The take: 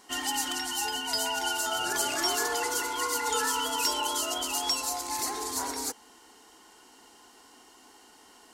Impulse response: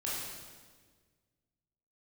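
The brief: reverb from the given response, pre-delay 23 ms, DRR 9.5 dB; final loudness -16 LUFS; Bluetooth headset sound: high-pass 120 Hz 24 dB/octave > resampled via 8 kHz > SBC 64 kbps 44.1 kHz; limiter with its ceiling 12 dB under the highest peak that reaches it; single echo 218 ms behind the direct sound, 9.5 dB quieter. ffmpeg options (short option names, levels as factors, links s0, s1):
-filter_complex "[0:a]alimiter=level_in=1.33:limit=0.0631:level=0:latency=1,volume=0.75,aecho=1:1:218:0.335,asplit=2[s0][s1];[1:a]atrim=start_sample=2205,adelay=23[s2];[s1][s2]afir=irnorm=-1:irlink=0,volume=0.211[s3];[s0][s3]amix=inputs=2:normalize=0,highpass=f=120:w=0.5412,highpass=f=120:w=1.3066,aresample=8000,aresample=44100,volume=10" -ar 44100 -c:a sbc -b:a 64k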